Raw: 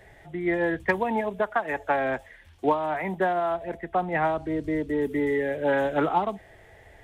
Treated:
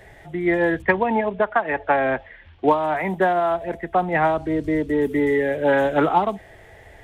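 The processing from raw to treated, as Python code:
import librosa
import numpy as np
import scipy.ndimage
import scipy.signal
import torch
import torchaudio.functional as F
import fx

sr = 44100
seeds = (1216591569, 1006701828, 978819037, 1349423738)

y = fx.lowpass(x, sr, hz=3500.0, slope=24, at=(0.82, 2.68))
y = F.gain(torch.from_numpy(y), 5.5).numpy()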